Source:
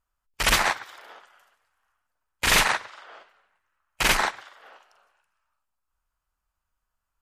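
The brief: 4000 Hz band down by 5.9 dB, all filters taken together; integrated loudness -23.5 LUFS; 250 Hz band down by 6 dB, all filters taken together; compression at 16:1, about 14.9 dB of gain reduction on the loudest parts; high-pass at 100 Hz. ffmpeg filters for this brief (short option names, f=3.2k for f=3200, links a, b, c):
-af "highpass=100,equalizer=f=250:t=o:g=-8.5,equalizer=f=4k:t=o:g=-8,acompressor=threshold=-33dB:ratio=16,volume=16dB"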